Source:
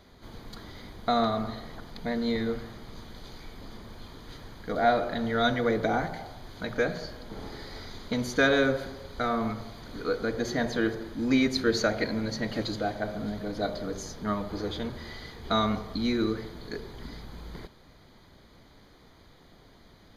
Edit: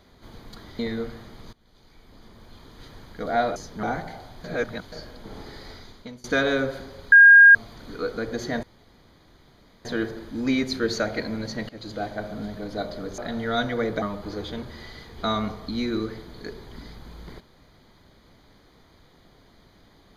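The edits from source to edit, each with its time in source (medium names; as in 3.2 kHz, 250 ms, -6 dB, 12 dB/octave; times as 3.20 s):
0.79–2.28 s: delete
3.02–4.48 s: fade in, from -22 dB
5.05–5.89 s: swap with 14.02–14.29 s
6.50–6.98 s: reverse
7.72–8.30 s: fade out, to -24 dB
9.18–9.61 s: bleep 1.62 kHz -7 dBFS
10.69 s: insert room tone 1.22 s
12.53–12.87 s: fade in, from -19 dB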